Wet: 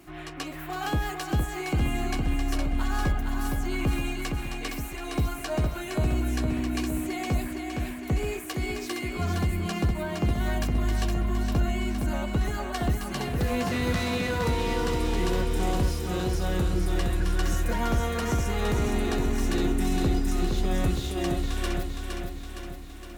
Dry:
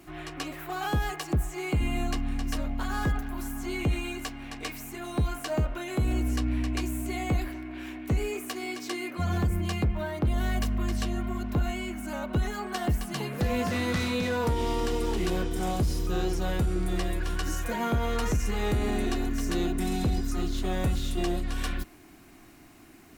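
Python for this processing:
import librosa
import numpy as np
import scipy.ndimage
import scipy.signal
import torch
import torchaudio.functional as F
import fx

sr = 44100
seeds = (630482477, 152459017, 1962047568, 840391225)

y = fx.echo_feedback(x, sr, ms=464, feedback_pct=58, wet_db=-5.0)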